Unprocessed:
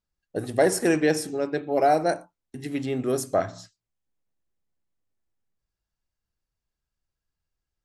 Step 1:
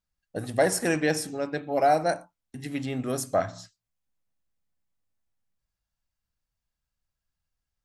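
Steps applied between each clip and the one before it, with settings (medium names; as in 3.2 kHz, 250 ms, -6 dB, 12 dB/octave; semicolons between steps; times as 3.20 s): peaking EQ 380 Hz -9 dB 0.55 oct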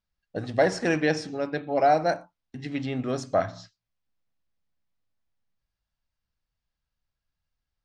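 low-pass 5.5 kHz 24 dB/octave; trim +1 dB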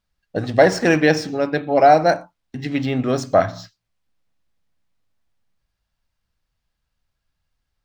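median filter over 3 samples; trim +8.5 dB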